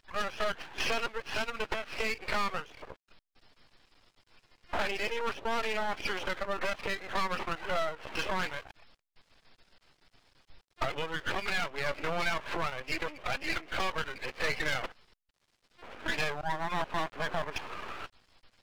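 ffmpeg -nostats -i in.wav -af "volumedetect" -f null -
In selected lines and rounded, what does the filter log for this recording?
mean_volume: -34.7 dB
max_volume: -15.4 dB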